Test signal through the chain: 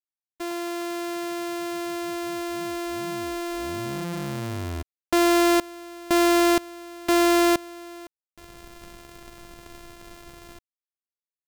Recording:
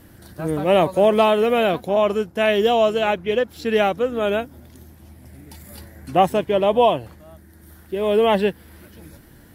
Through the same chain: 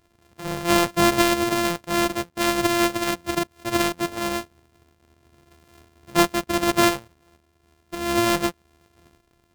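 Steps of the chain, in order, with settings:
samples sorted by size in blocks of 128 samples
power curve on the samples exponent 1.4

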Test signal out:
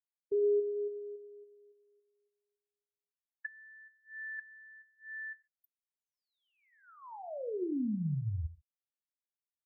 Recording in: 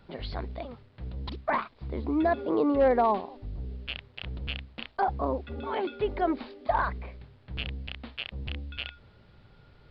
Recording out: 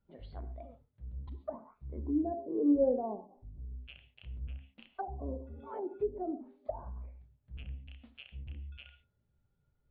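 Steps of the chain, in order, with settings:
reverb whose tail is shaped and stops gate 160 ms flat, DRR 6.5 dB
treble cut that deepens with the level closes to 500 Hz, closed at −24.5 dBFS
every bin expanded away from the loudest bin 1.5 to 1
level −3.5 dB

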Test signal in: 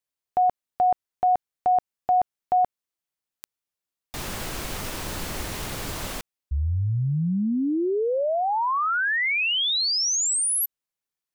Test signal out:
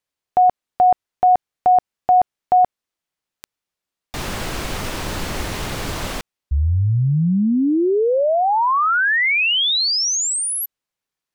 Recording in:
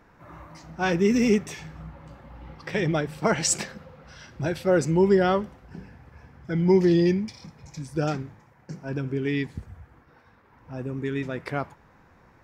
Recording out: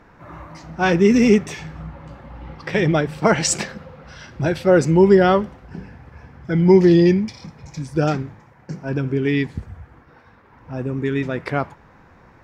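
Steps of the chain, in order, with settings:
high-shelf EQ 8,100 Hz −9.5 dB
level +7 dB

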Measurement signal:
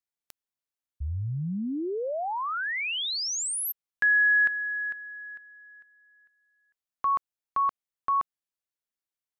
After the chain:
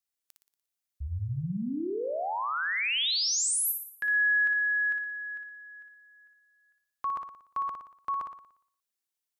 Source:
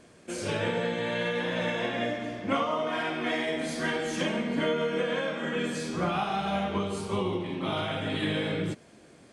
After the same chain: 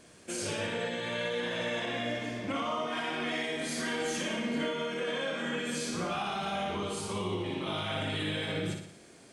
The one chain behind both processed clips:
high-shelf EQ 3,000 Hz +8 dB
brickwall limiter −23 dBFS
on a send: flutter between parallel walls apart 10.1 metres, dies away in 0.61 s
on the sum: level −3 dB

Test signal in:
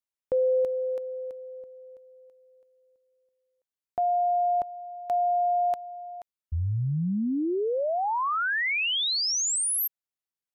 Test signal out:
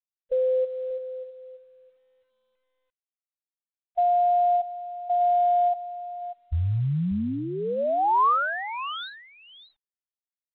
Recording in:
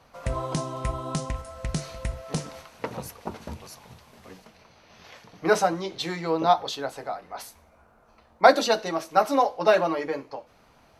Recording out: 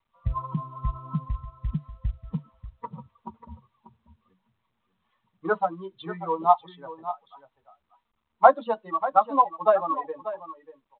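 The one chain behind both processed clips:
spectral dynamics exaggerated over time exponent 2
high shelf with overshoot 1,600 Hz −12 dB, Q 3
in parallel at +2.5 dB: downward compressor 10 to 1, threshold −32 dBFS
on the sum: parametric band 340 Hz −8.5 dB 0.96 octaves
on a send: single-tap delay 589 ms −13 dB
on the sum: mu-law 64 kbit/s 8,000 Hz

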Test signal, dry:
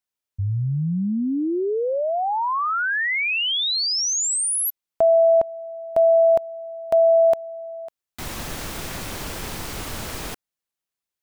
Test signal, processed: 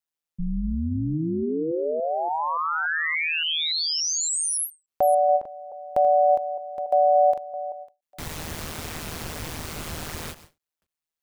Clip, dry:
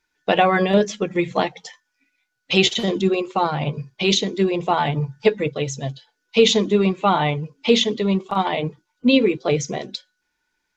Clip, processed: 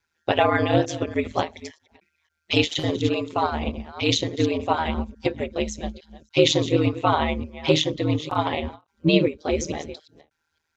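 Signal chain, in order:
delay that plays each chunk backwards 286 ms, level −14 dB
ring modulation 79 Hz
every ending faded ahead of time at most 270 dB per second

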